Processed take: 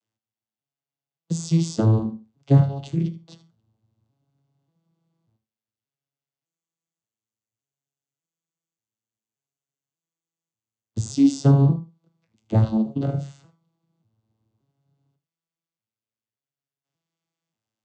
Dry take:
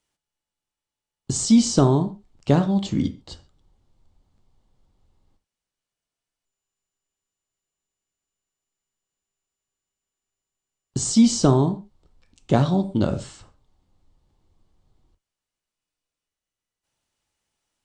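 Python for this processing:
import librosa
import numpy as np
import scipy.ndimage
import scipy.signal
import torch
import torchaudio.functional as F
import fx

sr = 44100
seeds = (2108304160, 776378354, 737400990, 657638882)

p1 = fx.vocoder_arp(x, sr, chord='major triad', root=45, every_ms=584)
p2 = fx.high_shelf(p1, sr, hz=3100.0, db=8.0)
y = p2 + fx.echo_single(p2, sr, ms=78, db=-15.5, dry=0)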